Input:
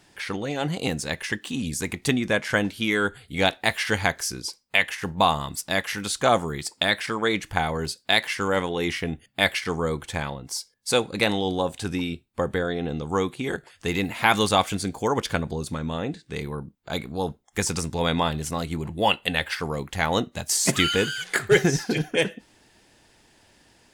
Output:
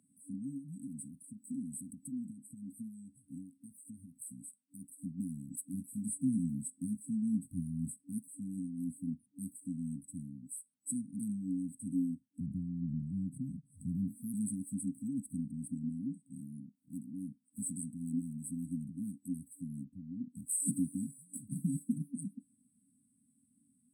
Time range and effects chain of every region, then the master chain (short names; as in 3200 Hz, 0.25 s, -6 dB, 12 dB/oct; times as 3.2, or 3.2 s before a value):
0.57–4.48 compressor 12:1, threshold -28 dBFS + core saturation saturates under 600 Hz
5.73–8.18 low shelf 370 Hz +7 dB + doubler 23 ms -8 dB
12.4–14.08 tone controls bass +12 dB, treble -11 dB + fixed phaser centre 1200 Hz, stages 6 + backwards sustainer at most 130 dB/s
16.26–18.49 low shelf 83 Hz -11.5 dB + upward compressor, threshold -45 dBFS + hard clip -19.5 dBFS
19.84–20.3 compressor 2:1, threshold -28 dBFS + air absorption 340 m
whole clip: HPF 120 Hz 12 dB/oct; FFT band-reject 280–7900 Hz; three-band isolator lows -18 dB, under 240 Hz, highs -18 dB, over 7900 Hz; gain +1 dB